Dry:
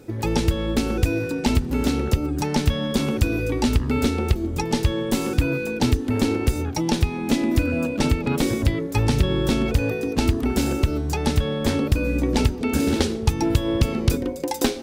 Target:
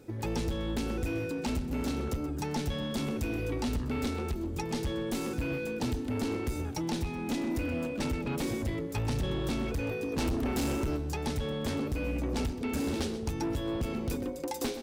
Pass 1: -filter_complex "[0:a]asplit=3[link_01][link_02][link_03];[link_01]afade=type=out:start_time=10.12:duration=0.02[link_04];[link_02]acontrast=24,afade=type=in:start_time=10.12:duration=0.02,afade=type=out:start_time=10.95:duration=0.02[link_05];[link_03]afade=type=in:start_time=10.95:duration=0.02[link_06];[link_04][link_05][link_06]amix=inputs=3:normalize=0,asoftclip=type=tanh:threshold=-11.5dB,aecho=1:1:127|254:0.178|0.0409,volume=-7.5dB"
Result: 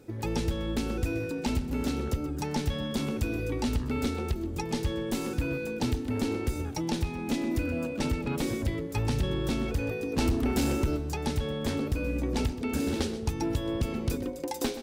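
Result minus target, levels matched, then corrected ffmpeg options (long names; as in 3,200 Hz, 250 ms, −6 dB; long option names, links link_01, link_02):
soft clipping: distortion −7 dB
-filter_complex "[0:a]asplit=3[link_01][link_02][link_03];[link_01]afade=type=out:start_time=10.12:duration=0.02[link_04];[link_02]acontrast=24,afade=type=in:start_time=10.12:duration=0.02,afade=type=out:start_time=10.95:duration=0.02[link_05];[link_03]afade=type=in:start_time=10.95:duration=0.02[link_06];[link_04][link_05][link_06]amix=inputs=3:normalize=0,asoftclip=type=tanh:threshold=-19dB,aecho=1:1:127|254:0.178|0.0409,volume=-7.5dB"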